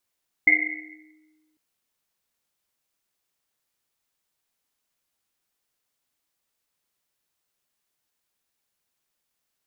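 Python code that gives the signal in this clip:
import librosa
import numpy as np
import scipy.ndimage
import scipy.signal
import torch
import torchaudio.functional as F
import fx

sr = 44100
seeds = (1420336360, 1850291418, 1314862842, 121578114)

y = fx.risset_drum(sr, seeds[0], length_s=1.1, hz=310.0, decay_s=1.61, noise_hz=2100.0, noise_width_hz=210.0, noise_pct=80)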